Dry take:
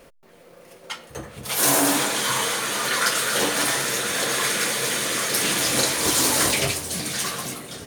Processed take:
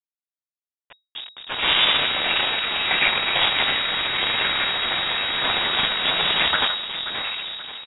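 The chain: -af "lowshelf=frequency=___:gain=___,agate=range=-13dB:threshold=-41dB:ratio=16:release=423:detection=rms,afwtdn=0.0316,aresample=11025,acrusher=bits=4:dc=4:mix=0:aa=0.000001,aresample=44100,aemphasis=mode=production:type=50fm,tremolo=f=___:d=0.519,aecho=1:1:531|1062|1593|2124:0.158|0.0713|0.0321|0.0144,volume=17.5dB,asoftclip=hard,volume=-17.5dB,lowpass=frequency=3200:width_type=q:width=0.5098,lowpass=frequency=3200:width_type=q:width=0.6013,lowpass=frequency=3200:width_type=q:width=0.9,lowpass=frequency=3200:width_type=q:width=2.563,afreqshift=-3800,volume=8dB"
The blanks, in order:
61, -8.5, 210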